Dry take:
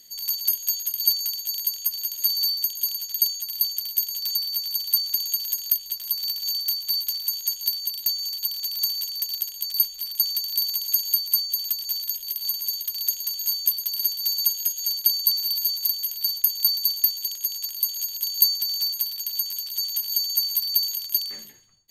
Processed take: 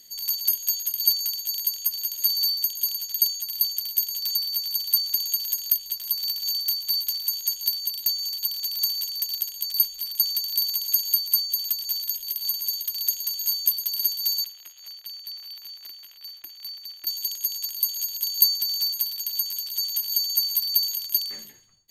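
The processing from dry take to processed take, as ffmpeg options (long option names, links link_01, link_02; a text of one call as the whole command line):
ffmpeg -i in.wav -filter_complex "[0:a]asettb=1/sr,asplit=3[link_01][link_02][link_03];[link_01]atrim=end=14.444[link_04];[link_02]atrim=start=14.44:end=17.07,asetpts=PTS-STARTPTS,afade=type=in:duration=0.004:curve=qsin,afade=type=out:start_time=2.626:duration=0.004:curve=qsin,acrossover=split=330 3100:gain=0.178 1 0.0794[link_05][link_06][link_07];[link_05][link_06][link_07]amix=inputs=3:normalize=0[link_08];[link_03]atrim=start=17.066[link_09];[link_04][link_08]acrossfade=duration=0.004:curve1=hsin:curve2=qsin[link_10];[link_10][link_09]acrossfade=duration=0.004:curve1=qsin:curve2=hsin" out.wav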